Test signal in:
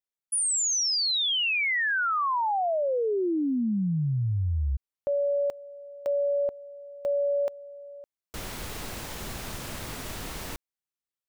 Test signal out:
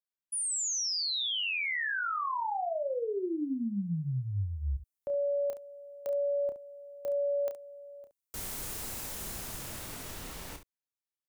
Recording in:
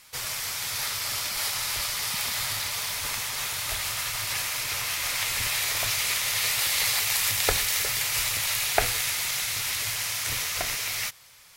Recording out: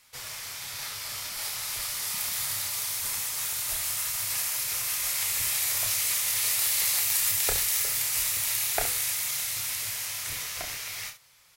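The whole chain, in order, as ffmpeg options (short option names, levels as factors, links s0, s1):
-filter_complex "[0:a]acrossover=split=310|6600[s0][s1][s2];[s2]dynaudnorm=f=180:g=21:m=3.98[s3];[s0][s1][s3]amix=inputs=3:normalize=0,aecho=1:1:30|69:0.422|0.266,volume=0.422"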